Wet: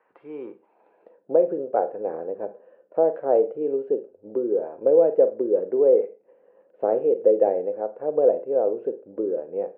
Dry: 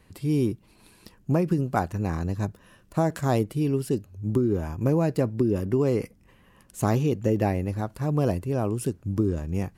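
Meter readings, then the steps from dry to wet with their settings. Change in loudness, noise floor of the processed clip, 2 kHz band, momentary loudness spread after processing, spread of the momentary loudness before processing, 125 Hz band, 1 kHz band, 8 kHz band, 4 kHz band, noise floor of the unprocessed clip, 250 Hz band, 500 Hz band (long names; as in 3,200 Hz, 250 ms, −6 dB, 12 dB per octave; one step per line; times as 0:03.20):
+3.5 dB, −63 dBFS, below −10 dB, 14 LU, 6 LU, below −25 dB, +0.5 dB, below −35 dB, below −25 dB, −58 dBFS, −7.0 dB, +8.5 dB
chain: band-pass filter sweep 1,100 Hz → 530 Hz, 0:00.41–0:01.27
loudspeaker in its box 380–2,200 Hz, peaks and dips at 490 Hz +8 dB, 1,100 Hz −10 dB, 2,000 Hz −5 dB
four-comb reverb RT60 0.31 s, combs from 33 ms, DRR 11 dB
level +8 dB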